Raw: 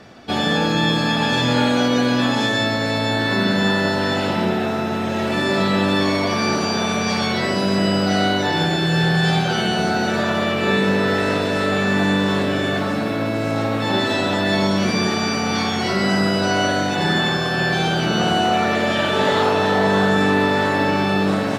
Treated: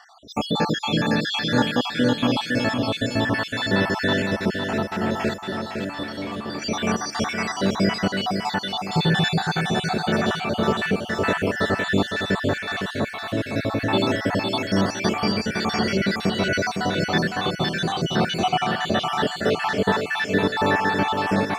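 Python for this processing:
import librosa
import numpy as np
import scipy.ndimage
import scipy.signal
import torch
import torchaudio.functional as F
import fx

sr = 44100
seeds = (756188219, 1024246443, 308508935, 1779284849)

p1 = fx.spec_dropout(x, sr, seeds[0], share_pct=67)
p2 = fx.comb_fb(p1, sr, f0_hz=72.0, decay_s=1.1, harmonics='all', damping=0.0, mix_pct=70, at=(5.36, 6.62))
y = p2 + fx.echo_feedback(p2, sr, ms=509, feedback_pct=44, wet_db=-6.0, dry=0)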